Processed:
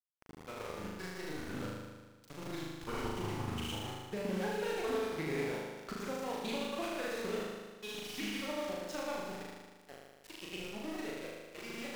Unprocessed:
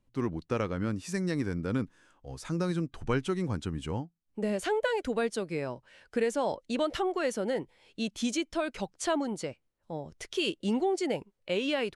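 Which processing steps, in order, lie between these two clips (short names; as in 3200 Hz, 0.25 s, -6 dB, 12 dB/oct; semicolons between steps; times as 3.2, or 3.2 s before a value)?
repeated pitch sweeps -2.5 st, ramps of 0.419 s; Doppler pass-by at 5.07, 16 m/s, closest 5.3 m; LPF 6500 Hz; bell 190 Hz -5 dB 2.8 oct; compressor 12:1, threshold -51 dBFS, peak gain reduction 21.5 dB; grains 0.1 s, grains 20/s; sample gate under -59 dBFS; on a send: flutter echo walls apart 6.6 m, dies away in 1.4 s; on the sum: Doppler distortion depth 0.21 ms; gain +15 dB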